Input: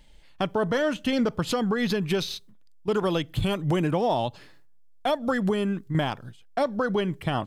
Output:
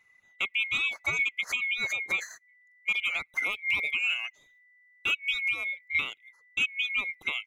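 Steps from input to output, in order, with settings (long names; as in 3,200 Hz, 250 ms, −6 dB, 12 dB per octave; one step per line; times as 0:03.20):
neighbouring bands swapped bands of 2,000 Hz
reverb reduction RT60 0.52 s
expander for the loud parts 1.5 to 1, over −38 dBFS
level −2.5 dB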